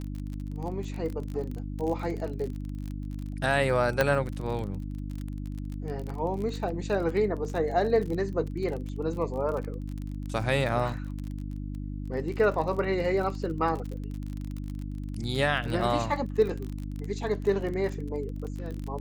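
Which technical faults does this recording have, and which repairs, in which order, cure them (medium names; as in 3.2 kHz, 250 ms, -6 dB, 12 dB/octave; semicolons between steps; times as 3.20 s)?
crackle 32 per s -33 dBFS
hum 50 Hz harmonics 6 -35 dBFS
4.01 s: pop -9 dBFS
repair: de-click; de-hum 50 Hz, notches 6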